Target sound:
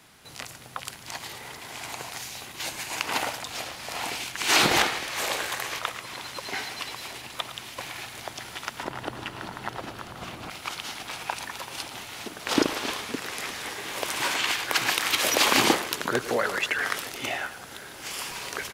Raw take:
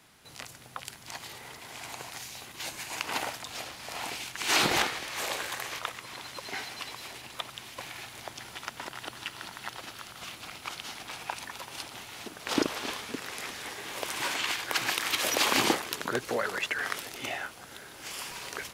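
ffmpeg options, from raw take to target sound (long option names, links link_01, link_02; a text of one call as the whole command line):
ffmpeg -i in.wav -filter_complex "[0:a]asettb=1/sr,asplit=3[link_01][link_02][link_03];[link_01]atrim=end=8.834[link_04];[link_02]atrim=start=8.83:end=10.5,asetpts=PTS-STARTPTS,afade=type=in:duration=0.004:curve=qsin,afade=type=out:start_time=1.666:duration=0.004:curve=qsin,tiltshelf=frequency=1400:gain=7.5[link_05];[link_03]atrim=start=10.496[link_06];[link_04][link_05]acrossfade=duration=0.004:curve1=hsin:curve2=qsin[link_07];[link_07][link_06]acrossfade=duration=0.004:curve1=qsin:curve2=hsin,asplit=2[link_08][link_09];[link_09]adelay=110,highpass=300,lowpass=3400,asoftclip=type=hard:threshold=-23.5dB,volume=-12dB[link_10];[link_08][link_10]amix=inputs=2:normalize=0,volume=4.5dB" out.wav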